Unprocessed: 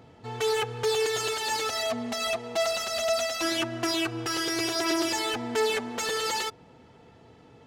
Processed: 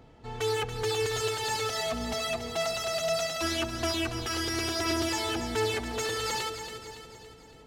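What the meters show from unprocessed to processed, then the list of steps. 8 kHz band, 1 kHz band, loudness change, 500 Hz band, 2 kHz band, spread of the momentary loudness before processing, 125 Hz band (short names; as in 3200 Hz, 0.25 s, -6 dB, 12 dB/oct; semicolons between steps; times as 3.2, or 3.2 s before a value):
-2.0 dB, -2.0 dB, -2.5 dB, -2.5 dB, -2.5 dB, 4 LU, +4.5 dB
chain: octaver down 2 oct, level -2 dB; split-band echo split 590 Hz, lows 0.374 s, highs 0.281 s, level -9 dB; gain -3 dB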